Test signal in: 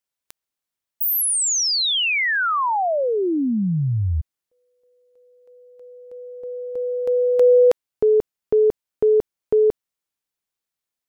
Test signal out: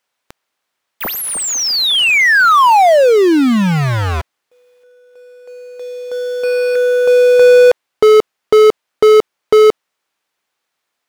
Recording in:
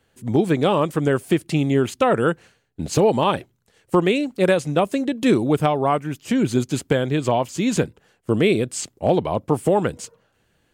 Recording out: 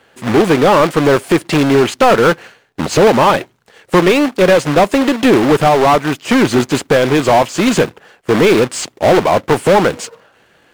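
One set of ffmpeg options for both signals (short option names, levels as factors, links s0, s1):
-filter_complex "[0:a]acrusher=bits=2:mode=log:mix=0:aa=0.000001,asplit=2[s0][s1];[s1]highpass=f=720:p=1,volume=14.1,asoftclip=type=tanh:threshold=0.668[s2];[s0][s2]amix=inputs=2:normalize=0,lowpass=f=1800:p=1,volume=0.501,volume=1.41"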